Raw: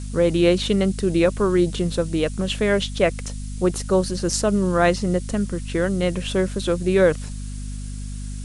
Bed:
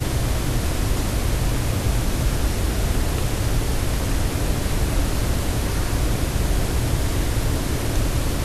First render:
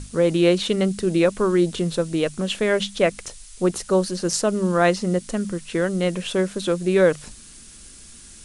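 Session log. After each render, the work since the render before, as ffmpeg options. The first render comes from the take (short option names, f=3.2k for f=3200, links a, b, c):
-af "bandreject=f=50:t=h:w=6,bandreject=f=100:t=h:w=6,bandreject=f=150:t=h:w=6,bandreject=f=200:t=h:w=6,bandreject=f=250:t=h:w=6"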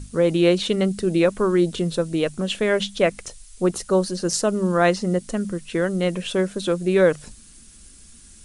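-af "afftdn=nr=6:nf=-44"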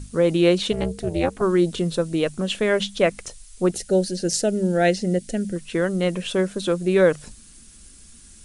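-filter_complex "[0:a]asplit=3[a][b][c];[a]afade=t=out:st=0.71:d=0.02[d];[b]tremolo=f=260:d=1,afade=t=in:st=0.71:d=0.02,afade=t=out:st=1.41:d=0.02[e];[c]afade=t=in:st=1.41:d=0.02[f];[d][e][f]amix=inputs=3:normalize=0,asettb=1/sr,asplit=3[g][h][i];[g]atrim=end=3.734[j];[h]atrim=start=3.73:end=5.56,asetpts=PTS-STARTPTS,afade=t=in:d=0.004:c=qsin,afade=t=out:st=1.826:d=0.004:c=qsin,asuperstop=centerf=1100:order=4:qfactor=1.4[k];[i]atrim=start=5.556[l];[j][k]acrossfade=d=0.004:c1=hsin:c2=qsin[m];[m][l]acrossfade=d=0.004:c1=qsin:c2=hsin"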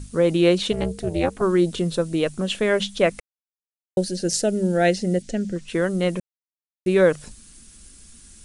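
-filter_complex "[0:a]asettb=1/sr,asplit=3[a][b][c];[a]atrim=end=5.224[d];[b]atrim=start=5.22:end=5.68,asetpts=PTS-STARTPTS,afade=t=in:d=0.004:c=qsin,afade=t=out:st=0.456:d=0.004:c=qsin,lowpass=f=7.4k:w=0.5412,lowpass=f=7.4k:w=1.3066[e];[c]atrim=start=5.676[f];[d][e]acrossfade=d=0.004:c1=hsin:c2=qsin[g];[g][f]acrossfade=d=0.004:c1=qsin:c2=hsin,asplit=5[h][i][j][k][l];[h]atrim=end=3.2,asetpts=PTS-STARTPTS,afade=t=out:st=3.196:d=0.004:c=hsin[m];[i]atrim=start=3.2:end=3.97,asetpts=PTS-STARTPTS,volume=0[n];[j]atrim=start=3.97:end=6.2,asetpts=PTS-STARTPTS,afade=t=in:d=0.004:c=hsin,afade=t=out:st=2.226:d=0.004:c=hsin[o];[k]atrim=start=6.2:end=6.86,asetpts=PTS-STARTPTS,volume=0[p];[l]atrim=start=6.86,asetpts=PTS-STARTPTS,afade=t=in:d=0.004:c=hsin[q];[m][n][o][p][q]concat=n=5:v=0:a=1"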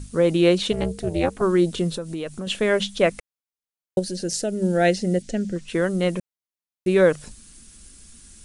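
-filter_complex "[0:a]asettb=1/sr,asplit=3[a][b][c];[a]atrim=end=1.974[d];[b]atrim=start=1.97:end=2.47,asetpts=PTS-STARTPTS,afade=t=in:d=0.004:c=qsin,afade=t=out:st=0.496:d=0.004:c=qsin,acompressor=threshold=-28dB:ratio=3:attack=3.2:release=140:knee=1:detection=peak[e];[c]atrim=start=2.466[f];[d][e]acrossfade=d=0.004:c1=hsin:c2=qsin[g];[g][f]acrossfade=d=0.004:c1=qsin:c2=hsin,asettb=1/sr,asplit=3[h][i][j];[h]atrim=end=3.994[k];[i]atrim=start=3.99:end=4.62,asetpts=PTS-STARTPTS,afade=t=in:d=0.004:c=qsin,afade=t=out:st=0.626:d=0.004:c=qsin,acompressor=threshold=-28dB:ratio=1.5:attack=3.2:release=140:knee=1:detection=peak[l];[j]atrim=start=4.616[m];[k][l]acrossfade=d=0.004:c1=hsin:c2=qsin[n];[n][m]acrossfade=d=0.004:c1=qsin:c2=hsin"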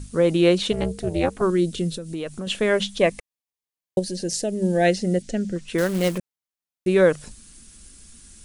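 -filter_complex "[0:a]asettb=1/sr,asplit=3[a][b][c];[a]atrim=end=1.504[d];[b]atrim=start=1.5:end=2.14,asetpts=PTS-STARTPTS,afade=t=in:d=0.004:c=qsin,afade=t=out:st=0.636:d=0.004:c=qsin,equalizer=f=960:t=o:w=1.3:g=-14[e];[c]atrim=start=2.136[f];[d][e]acrossfade=d=0.004:c1=hsin:c2=qsin[g];[g][f]acrossfade=d=0.004:c1=qsin:c2=hsin,asettb=1/sr,asplit=3[h][i][j];[h]atrim=end=2.984[k];[i]atrim=start=2.98:end=4.86,asetpts=PTS-STARTPTS,afade=t=in:d=0.004:c=qsin,afade=t=out:st=1.876:d=0.004:c=qsin,asuperstop=centerf=1400:order=4:qfactor=4.6[l];[j]atrim=start=4.856[m];[k][l]acrossfade=d=0.004:c1=hsin:c2=qsin[n];[n][m]acrossfade=d=0.004:c1=qsin:c2=hsin,asettb=1/sr,asplit=3[o][p][q];[o]atrim=end=5.784[r];[p]atrim=start=5.78:end=6.18,asetpts=PTS-STARTPTS,afade=t=in:d=0.004:c=qsin,afade=t=out:st=0.396:d=0.004:c=qsin,acrusher=bits=3:mode=log:mix=0:aa=0.000001[s];[q]atrim=start=6.176[t];[r][s]acrossfade=d=0.004:c1=hsin:c2=qsin[u];[u][t]acrossfade=d=0.004:c1=qsin:c2=hsin"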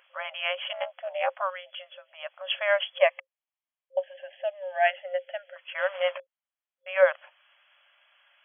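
-af "afftfilt=real='re*between(b*sr/4096,530,3400)':imag='im*between(b*sr/4096,530,3400)':win_size=4096:overlap=0.75"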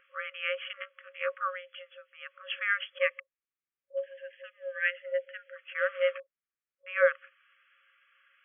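-af "lowpass=f=2.5k:w=0.5412,lowpass=f=2.5k:w=1.3066,afftfilt=real='re*(1-between(b*sr/4096,550,1100))':imag='im*(1-between(b*sr/4096,550,1100))':win_size=4096:overlap=0.75"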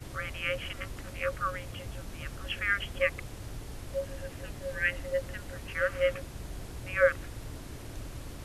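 -filter_complex "[1:a]volume=-20dB[a];[0:a][a]amix=inputs=2:normalize=0"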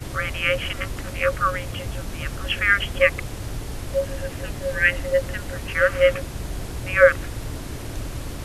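-af "volume=10.5dB,alimiter=limit=-2dB:level=0:latency=1"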